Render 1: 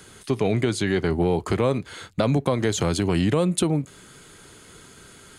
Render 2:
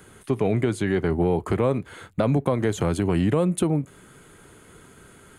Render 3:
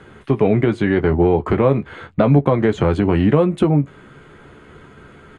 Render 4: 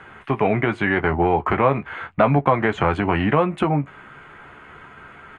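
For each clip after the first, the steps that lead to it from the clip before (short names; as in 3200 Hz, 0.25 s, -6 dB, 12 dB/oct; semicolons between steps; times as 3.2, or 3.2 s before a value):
bell 4900 Hz -12.5 dB 1.4 oct
LPF 3000 Hz 12 dB/oct; doubler 14 ms -7.5 dB; gain +6.5 dB
band shelf 1400 Hz +11 dB 2.4 oct; gain -6 dB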